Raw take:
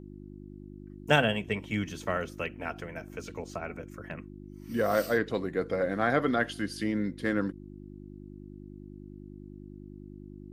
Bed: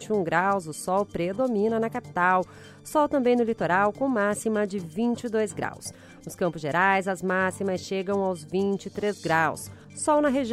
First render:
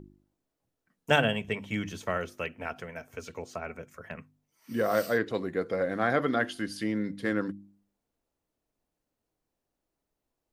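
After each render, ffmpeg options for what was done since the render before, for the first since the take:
ffmpeg -i in.wav -af "bandreject=frequency=50:width_type=h:width=4,bandreject=frequency=100:width_type=h:width=4,bandreject=frequency=150:width_type=h:width=4,bandreject=frequency=200:width_type=h:width=4,bandreject=frequency=250:width_type=h:width=4,bandreject=frequency=300:width_type=h:width=4,bandreject=frequency=350:width_type=h:width=4" out.wav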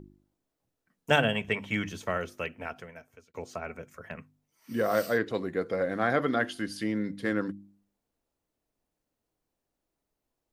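ffmpeg -i in.wav -filter_complex "[0:a]asettb=1/sr,asplit=3[link_01][link_02][link_03];[link_01]atrim=end=1.354[link_04];[link_02]atrim=start=1.35:end=1.88,asetpts=PTS-STARTPTS,afade=type=in:duration=0.004:curve=qsin,afade=type=out:start_time=0.526:duration=0.004:curve=qsin,equalizer=frequency=1500:width_type=o:width=2.2:gain=6[link_05];[link_03]atrim=start=1.876[link_06];[link_04][link_05]acrossfade=duration=0.004:curve1=hsin:curve2=qsin[link_07];[link_07][link_06]acrossfade=duration=0.004:curve1=qsin:curve2=hsin,asplit=2[link_08][link_09];[link_08]atrim=end=3.34,asetpts=PTS-STARTPTS,afade=type=out:start_time=2.54:duration=0.8[link_10];[link_09]atrim=start=3.34,asetpts=PTS-STARTPTS,afade=type=in:duration=0.004:curve=hsin[link_11];[link_10][link_11]concat=n=2:v=0:a=1" out.wav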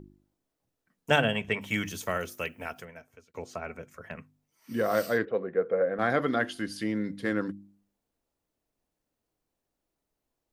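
ffmpeg -i in.wav -filter_complex "[0:a]asettb=1/sr,asplit=3[link_01][link_02][link_03];[link_01]atrim=end=1.614[link_04];[link_02]atrim=start=1.61:end=2.85,asetpts=PTS-STARTPTS,afade=type=in:duration=0.004:curve=qsin,afade=type=out:start_time=1.236:duration=0.004:curve=qsin,aemphasis=mode=production:type=50fm[link_05];[link_03]atrim=start=2.846[link_06];[link_04][link_05]acrossfade=duration=0.004:curve1=hsin:curve2=qsin[link_07];[link_07][link_06]acrossfade=duration=0.004:curve1=qsin:curve2=hsin,asettb=1/sr,asplit=3[link_08][link_09][link_10];[link_08]atrim=end=5.254[link_11];[link_09]atrim=start=5.25:end=5.99,asetpts=PTS-STARTPTS,afade=type=in:duration=0.004:curve=qsin,afade=type=out:start_time=0.736:duration=0.004:curve=qsin,highpass=190,equalizer=frequency=300:width_type=q:width=4:gain=-10,equalizer=frequency=490:width_type=q:width=4:gain=7,equalizer=frequency=930:width_type=q:width=4:gain=-6,equalizer=frequency=2000:width_type=q:width=4:gain=-6,lowpass=frequency=2300:width=0.5412,lowpass=frequency=2300:width=1.3066[link_12];[link_10]atrim=start=5.986[link_13];[link_11][link_12]acrossfade=duration=0.004:curve1=hsin:curve2=qsin[link_14];[link_14][link_13]acrossfade=duration=0.004:curve1=qsin:curve2=hsin" out.wav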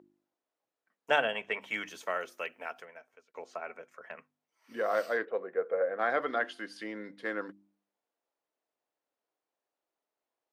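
ffmpeg -i in.wav -af "highpass=540,aemphasis=mode=reproduction:type=75kf" out.wav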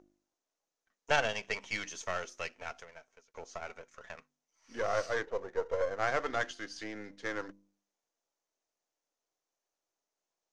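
ffmpeg -i in.wav -af "aeval=exprs='if(lt(val(0),0),0.447*val(0),val(0))':channel_layout=same,lowpass=frequency=6300:width_type=q:width=4.4" out.wav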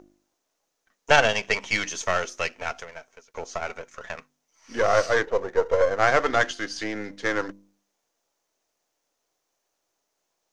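ffmpeg -i in.wav -af "volume=11.5dB,alimiter=limit=-3dB:level=0:latency=1" out.wav

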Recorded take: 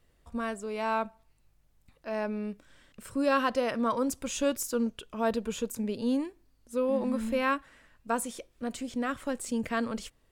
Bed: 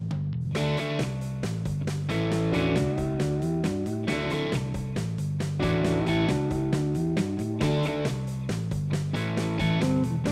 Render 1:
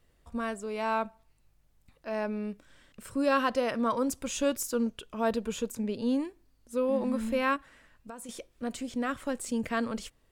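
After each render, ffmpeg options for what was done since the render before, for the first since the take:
ffmpeg -i in.wav -filter_complex "[0:a]asettb=1/sr,asplit=3[link_01][link_02][link_03];[link_01]atrim=end=5.714[link_04];[link_02]atrim=start=5.71:end=6.17,asetpts=PTS-STARTPTS,afade=type=in:duration=0.004:curve=qsin,afade=type=out:start_time=0.456:duration=0.004:curve=qsin,highshelf=frequency=10000:gain=-8.5[link_05];[link_03]atrim=start=6.166[link_06];[link_04][link_05]acrossfade=duration=0.004:curve1=hsin:curve2=qsin[link_07];[link_07][link_06]acrossfade=duration=0.004:curve1=qsin:curve2=hsin,asettb=1/sr,asplit=3[link_08][link_09][link_10];[link_08]atrim=end=7.564[link_11];[link_09]atrim=start=7.56:end=8.29,asetpts=PTS-STARTPTS,afade=type=in:duration=0.004:curve=qsin,afade=type=out:start_time=0.726:duration=0.004:curve=qsin,acompressor=threshold=-40dB:ratio=6:attack=3.2:release=140:knee=1:detection=peak[link_12];[link_10]atrim=start=8.286[link_13];[link_11][link_12]acrossfade=duration=0.004:curve1=hsin:curve2=qsin[link_14];[link_14][link_13]acrossfade=duration=0.004:curve1=qsin:curve2=hsin" out.wav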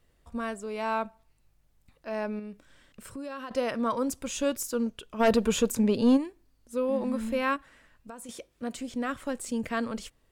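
ffmpeg -i in.wav -filter_complex "[0:a]asettb=1/sr,asplit=3[link_01][link_02][link_03];[link_01]atrim=end=2.394[link_04];[link_02]atrim=start=2.39:end=3.51,asetpts=PTS-STARTPTS,afade=type=in:duration=0.004:curve=qsin,afade=type=out:start_time=1.116:duration=0.004:curve=qsin,acompressor=threshold=-37dB:ratio=4:attack=3.2:release=140:knee=1:detection=peak[link_05];[link_03]atrim=start=3.506[link_06];[link_04][link_05]acrossfade=duration=0.004:curve1=hsin:curve2=qsin[link_07];[link_07][link_06]acrossfade=duration=0.004:curve1=qsin:curve2=hsin,asplit=3[link_08][link_09][link_10];[link_08]afade=type=out:start_time=5.19:duration=0.02[link_11];[link_09]aeval=exprs='0.178*sin(PI/2*1.78*val(0)/0.178)':channel_layout=same,afade=type=in:start_time=5.19:duration=0.02,afade=type=out:start_time=6.16:duration=0.02[link_12];[link_10]afade=type=in:start_time=6.16:duration=0.02[link_13];[link_11][link_12][link_13]amix=inputs=3:normalize=0,asettb=1/sr,asplit=3[link_14][link_15][link_16];[link_14]atrim=end=8.294[link_17];[link_15]atrim=start=8.29:end=8.76,asetpts=PTS-STARTPTS,afade=type=in:duration=0.004:curve=qsin,afade=type=out:start_time=0.466:duration=0.004:curve=qsin,highpass=51[link_18];[link_16]atrim=start=8.756[link_19];[link_17][link_18]acrossfade=duration=0.004:curve1=hsin:curve2=qsin[link_20];[link_20][link_19]acrossfade=duration=0.004:curve1=qsin:curve2=hsin" out.wav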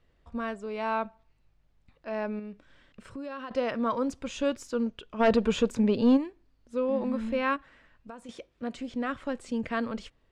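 ffmpeg -i in.wav -af "lowpass=4100" out.wav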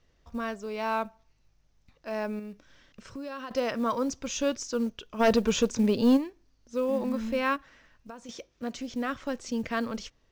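ffmpeg -i in.wav -af "lowpass=frequency=6000:width_type=q:width=4.8,acrusher=bits=8:mode=log:mix=0:aa=0.000001" out.wav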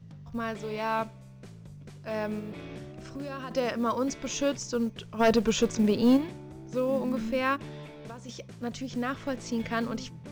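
ffmpeg -i in.wav -i bed.wav -filter_complex "[1:a]volume=-17.5dB[link_01];[0:a][link_01]amix=inputs=2:normalize=0" out.wav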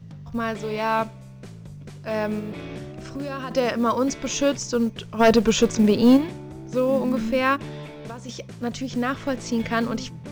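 ffmpeg -i in.wav -af "volume=6.5dB" out.wav

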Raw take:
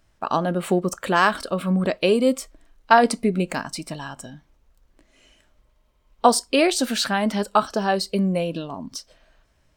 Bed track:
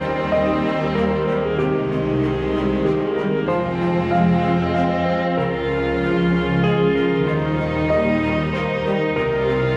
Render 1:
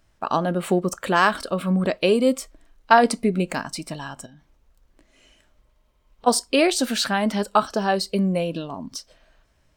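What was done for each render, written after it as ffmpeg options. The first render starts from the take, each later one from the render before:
ffmpeg -i in.wav -filter_complex "[0:a]asplit=3[link_01][link_02][link_03];[link_01]afade=type=out:start_time=4.25:duration=0.02[link_04];[link_02]acompressor=threshold=-45dB:ratio=6:attack=3.2:release=140:knee=1:detection=peak,afade=type=in:start_time=4.25:duration=0.02,afade=type=out:start_time=6.26:duration=0.02[link_05];[link_03]afade=type=in:start_time=6.26:duration=0.02[link_06];[link_04][link_05][link_06]amix=inputs=3:normalize=0" out.wav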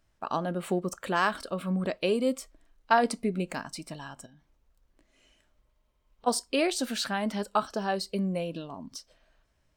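ffmpeg -i in.wav -af "volume=-8dB" out.wav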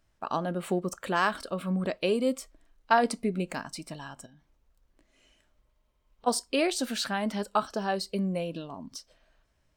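ffmpeg -i in.wav -af anull out.wav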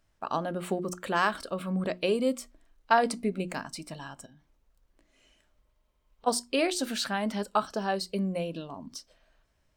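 ffmpeg -i in.wav -af "bandreject=frequency=60:width_type=h:width=6,bandreject=frequency=120:width_type=h:width=6,bandreject=frequency=180:width_type=h:width=6,bandreject=frequency=240:width_type=h:width=6,bandreject=frequency=300:width_type=h:width=6,bandreject=frequency=360:width_type=h:width=6" out.wav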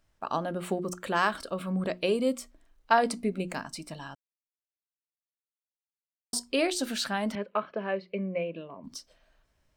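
ffmpeg -i in.wav -filter_complex "[0:a]asettb=1/sr,asplit=3[link_01][link_02][link_03];[link_01]atrim=end=7.354[link_04];[link_02]atrim=start=7.35:end=8.84,asetpts=PTS-STARTPTS,afade=type=in:duration=0.004:curve=qsin,afade=type=out:start_time=1.486:duration=0.004:curve=qsin,highpass=190,equalizer=frequency=270:width_type=q:width=4:gain=-7,equalizer=frequency=550:width_type=q:width=4:gain=4,equalizer=frequency=810:width_type=q:width=4:gain=-10,equalizer=frequency=1400:width_type=q:width=4:gain=-5,equalizer=frequency=2300:width_type=q:width=4:gain=9,lowpass=frequency=2500:width=0.5412,lowpass=frequency=2500:width=1.3066[link_05];[link_03]atrim=start=8.836[link_06];[link_04][link_05]acrossfade=duration=0.004:curve1=hsin:curve2=qsin[link_07];[link_07][link_06]acrossfade=duration=0.004:curve1=qsin:curve2=hsin,asplit=3[link_08][link_09][link_10];[link_08]atrim=end=4.15,asetpts=PTS-STARTPTS,afade=type=out:start_time=4.146:duration=0.004:curve=hsin[link_11];[link_09]atrim=start=4.15:end=6.33,asetpts=PTS-STARTPTS,volume=0[link_12];[link_10]atrim=start=6.33,asetpts=PTS-STARTPTS,afade=type=in:duration=0.004:curve=hsin[link_13];[link_11][link_12][link_13]concat=n=3:v=0:a=1" out.wav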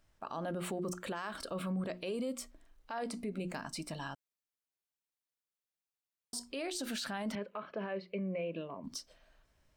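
ffmpeg -i in.wav -af "acompressor=threshold=-29dB:ratio=6,alimiter=level_in=6dB:limit=-24dB:level=0:latency=1:release=34,volume=-6dB" out.wav

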